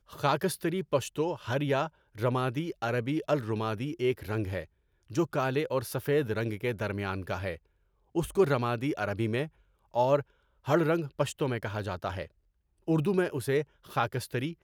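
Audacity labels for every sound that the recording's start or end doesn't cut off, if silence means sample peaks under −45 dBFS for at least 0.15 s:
2.150000	4.650000	sound
5.100000	7.570000	sound
8.150000	9.480000	sound
9.940000	10.220000	sound
10.660000	12.270000	sound
12.870000	13.640000	sound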